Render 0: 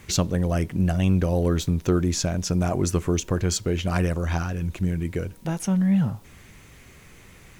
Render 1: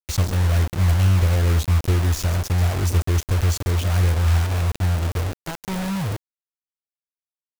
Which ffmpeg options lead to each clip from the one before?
-af "lowshelf=f=120:t=q:w=1.5:g=12.5,aecho=1:1:133|266|399:0.112|0.0404|0.0145,acrusher=bits=3:mix=0:aa=0.000001,volume=-5dB"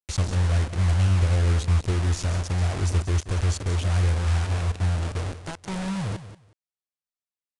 -af "aresample=22050,aresample=44100,aecho=1:1:183|366:0.224|0.0403,volume=-4dB"

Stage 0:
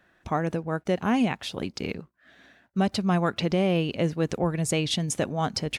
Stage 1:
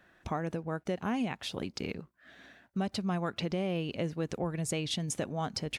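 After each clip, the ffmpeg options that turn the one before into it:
-af "acompressor=threshold=-36dB:ratio=2"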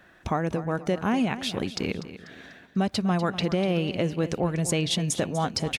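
-af "aecho=1:1:245|490|735|980:0.211|0.0803|0.0305|0.0116,volume=7.5dB"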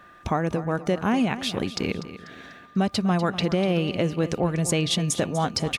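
-af "aeval=exprs='val(0)+0.00251*sin(2*PI*1200*n/s)':c=same,volume=2dB"

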